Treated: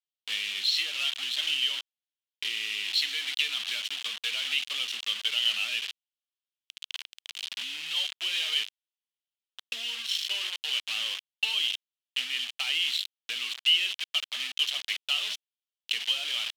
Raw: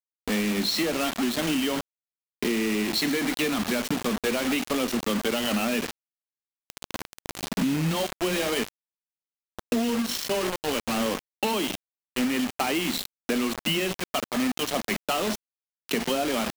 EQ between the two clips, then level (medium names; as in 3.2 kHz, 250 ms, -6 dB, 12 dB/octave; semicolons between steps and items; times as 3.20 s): band-pass filter 3.1 kHz, Q 4; tilt EQ +3 dB/octave; +3.5 dB